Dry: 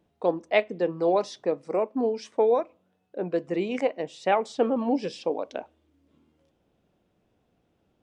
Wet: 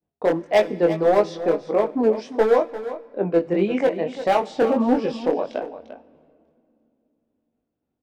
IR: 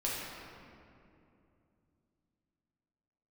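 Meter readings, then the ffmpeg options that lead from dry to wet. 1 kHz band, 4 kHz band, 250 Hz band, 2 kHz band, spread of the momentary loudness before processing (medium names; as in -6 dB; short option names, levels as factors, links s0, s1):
+4.5 dB, +3.0 dB, +6.5 dB, +3.5 dB, 8 LU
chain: -filter_complex "[0:a]agate=range=0.0224:threshold=0.00141:ratio=3:detection=peak,acontrast=27,aemphasis=mode=reproduction:type=75fm,volume=4.47,asoftclip=hard,volume=0.224,flanger=delay=19:depth=5.2:speed=1.6,aecho=1:1:347:0.237,asplit=2[s0][s1];[1:a]atrim=start_sample=2205,highshelf=f=2600:g=11.5[s2];[s1][s2]afir=irnorm=-1:irlink=0,volume=0.0473[s3];[s0][s3]amix=inputs=2:normalize=0,volume=1.5"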